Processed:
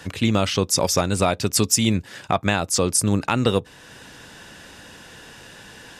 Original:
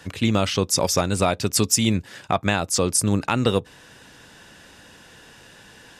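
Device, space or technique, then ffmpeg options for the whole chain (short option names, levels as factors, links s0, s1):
parallel compression: -filter_complex "[0:a]asplit=2[s0][s1];[s1]acompressor=threshold=0.0141:ratio=6,volume=0.668[s2];[s0][s2]amix=inputs=2:normalize=0"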